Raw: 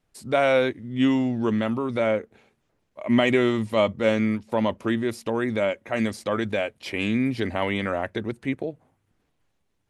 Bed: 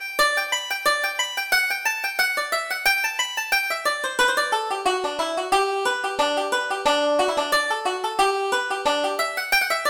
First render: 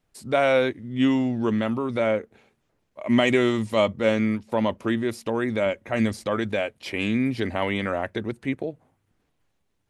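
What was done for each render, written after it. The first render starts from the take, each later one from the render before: 3.05–3.86 s: peaking EQ 6.9 kHz +5.5 dB 1.3 oct; 5.66–6.28 s: bass shelf 120 Hz +10 dB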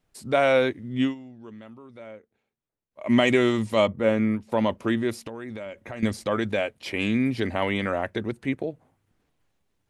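0.99–3.07 s: dip -19.5 dB, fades 0.16 s; 3.87–4.43 s: peaking EQ 4.9 kHz -12.5 dB 1.5 oct; 5.13–6.03 s: compression 8:1, threshold -32 dBFS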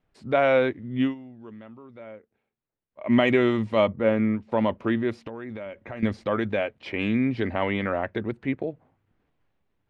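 low-pass 2.8 kHz 12 dB/octave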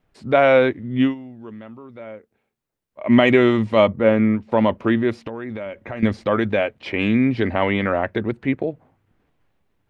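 trim +6 dB; peak limiter -2 dBFS, peak gain reduction 1 dB

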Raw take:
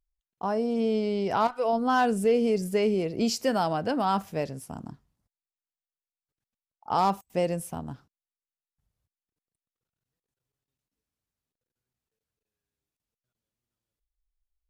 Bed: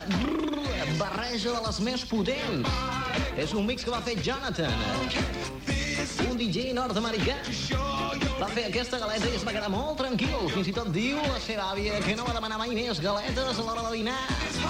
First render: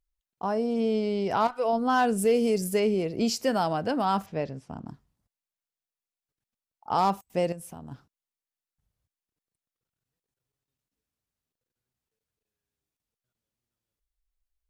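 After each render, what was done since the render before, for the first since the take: 2.18–2.80 s: treble shelf 6.3 kHz +11 dB; 4.26–4.88 s: distance through air 140 m; 7.52–7.92 s: compression 3:1, threshold -40 dBFS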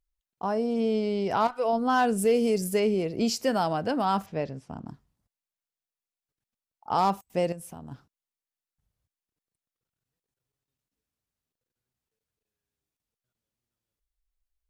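no audible change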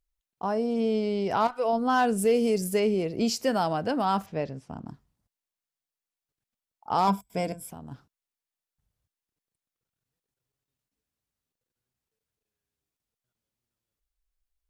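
7.07–7.70 s: rippled EQ curve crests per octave 1.7, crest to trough 13 dB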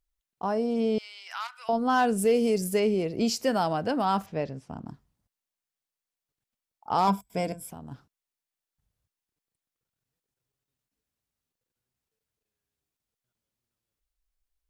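0.98–1.69 s: high-pass 1.4 kHz 24 dB/octave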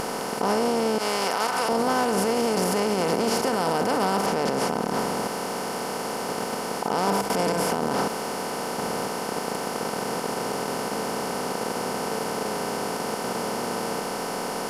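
spectral levelling over time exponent 0.2; peak limiter -14 dBFS, peak gain reduction 11 dB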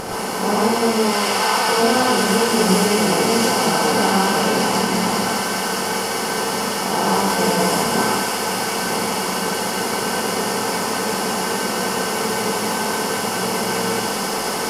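feedback echo behind a high-pass 203 ms, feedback 85%, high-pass 1.6 kHz, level -3 dB; gated-style reverb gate 160 ms rising, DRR -4.5 dB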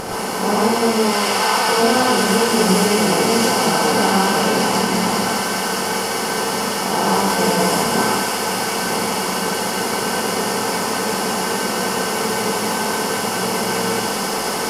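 trim +1 dB; peak limiter -3 dBFS, peak gain reduction 1.5 dB

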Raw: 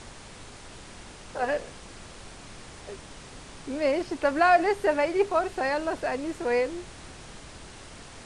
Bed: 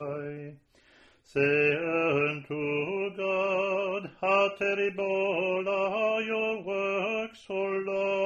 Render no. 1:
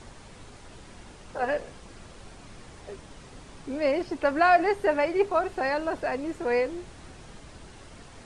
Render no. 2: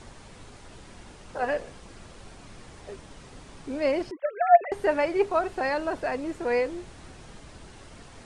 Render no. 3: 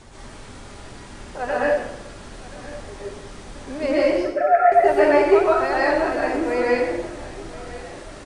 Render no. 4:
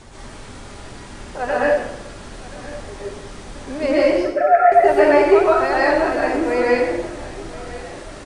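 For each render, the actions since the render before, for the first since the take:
noise reduction 6 dB, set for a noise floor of -46 dBFS
4.11–4.72 s: formants replaced by sine waves
feedback delay 1028 ms, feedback 47%, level -18 dB; plate-style reverb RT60 0.89 s, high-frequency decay 0.8×, pre-delay 110 ms, DRR -7 dB
trim +3 dB; peak limiter -3 dBFS, peak gain reduction 1 dB

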